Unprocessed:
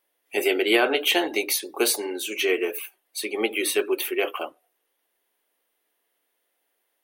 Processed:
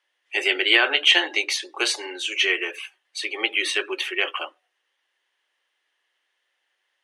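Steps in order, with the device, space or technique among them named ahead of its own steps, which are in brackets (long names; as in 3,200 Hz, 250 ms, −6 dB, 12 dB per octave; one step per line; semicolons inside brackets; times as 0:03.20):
phone speaker on a table (loudspeaker in its box 400–7,300 Hz, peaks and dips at 450 Hz −10 dB, 670 Hz −8 dB, 1,800 Hz +7 dB, 3,000 Hz +6 dB)
level +2 dB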